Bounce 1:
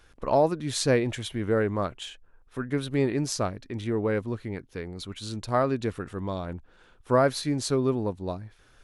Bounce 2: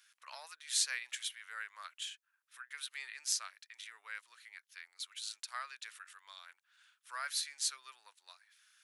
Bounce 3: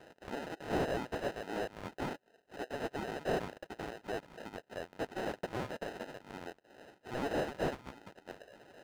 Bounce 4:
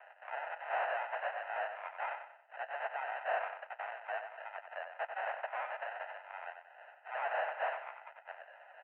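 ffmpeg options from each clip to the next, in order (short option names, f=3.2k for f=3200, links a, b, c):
-af "highpass=f=1.5k:w=0.5412,highpass=f=1.5k:w=1.3066,highshelf=f=5.1k:g=8,volume=-6dB"
-filter_complex "[0:a]acrusher=samples=39:mix=1:aa=0.000001,asplit=2[a][b];[b]highpass=f=720:p=1,volume=24dB,asoftclip=type=tanh:threshold=-23.5dB[c];[a][c]amix=inputs=2:normalize=0,lowpass=f=2.2k:p=1,volume=-6dB"
-filter_complex "[0:a]asuperpass=centerf=1300:order=12:qfactor=0.64,asplit=2[a][b];[b]aecho=0:1:93|186|279|372:0.398|0.151|0.0575|0.0218[c];[a][c]amix=inputs=2:normalize=0,volume=4dB"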